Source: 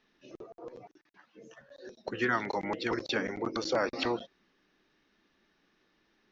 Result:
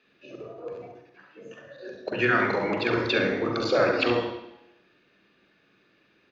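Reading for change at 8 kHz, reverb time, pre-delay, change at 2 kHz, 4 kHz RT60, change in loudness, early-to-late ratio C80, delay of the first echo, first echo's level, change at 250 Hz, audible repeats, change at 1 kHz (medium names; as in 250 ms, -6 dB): no reading, 0.85 s, 40 ms, +8.5 dB, 0.90 s, +7.5 dB, 8.5 dB, 68 ms, -8.0 dB, +7.0 dB, 1, +5.5 dB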